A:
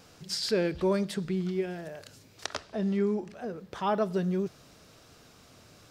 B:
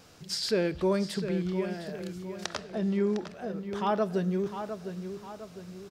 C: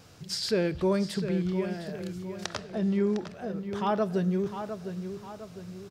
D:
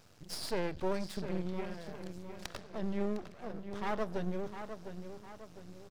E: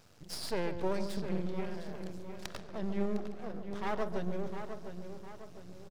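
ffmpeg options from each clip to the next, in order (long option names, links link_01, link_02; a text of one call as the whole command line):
ffmpeg -i in.wav -filter_complex "[0:a]asplit=2[link_01][link_02];[link_02]adelay=706,lowpass=frequency=4200:poles=1,volume=-9dB,asplit=2[link_03][link_04];[link_04]adelay=706,lowpass=frequency=4200:poles=1,volume=0.46,asplit=2[link_05][link_06];[link_06]adelay=706,lowpass=frequency=4200:poles=1,volume=0.46,asplit=2[link_07][link_08];[link_08]adelay=706,lowpass=frequency=4200:poles=1,volume=0.46,asplit=2[link_09][link_10];[link_10]adelay=706,lowpass=frequency=4200:poles=1,volume=0.46[link_11];[link_01][link_03][link_05][link_07][link_09][link_11]amix=inputs=6:normalize=0" out.wav
ffmpeg -i in.wav -af "equalizer=frequency=110:width=1.6:gain=8.5" out.wav
ffmpeg -i in.wav -af "aeval=exprs='max(val(0),0)':channel_layout=same,volume=-4.5dB" out.wav
ffmpeg -i in.wav -filter_complex "[0:a]asplit=2[link_01][link_02];[link_02]adelay=141,lowpass=frequency=890:poles=1,volume=-7dB,asplit=2[link_03][link_04];[link_04]adelay=141,lowpass=frequency=890:poles=1,volume=0.46,asplit=2[link_05][link_06];[link_06]adelay=141,lowpass=frequency=890:poles=1,volume=0.46,asplit=2[link_07][link_08];[link_08]adelay=141,lowpass=frequency=890:poles=1,volume=0.46,asplit=2[link_09][link_10];[link_10]adelay=141,lowpass=frequency=890:poles=1,volume=0.46[link_11];[link_01][link_03][link_05][link_07][link_09][link_11]amix=inputs=6:normalize=0" out.wav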